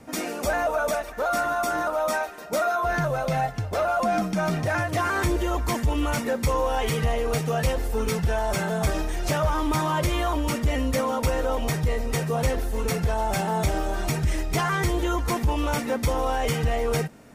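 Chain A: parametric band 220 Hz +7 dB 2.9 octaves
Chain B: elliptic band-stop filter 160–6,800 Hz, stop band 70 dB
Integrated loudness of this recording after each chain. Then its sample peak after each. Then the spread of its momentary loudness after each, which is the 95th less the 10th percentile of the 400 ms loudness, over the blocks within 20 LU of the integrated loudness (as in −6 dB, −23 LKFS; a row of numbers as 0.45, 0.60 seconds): −22.0, −31.5 LKFS; −8.5, −14.5 dBFS; 3, 12 LU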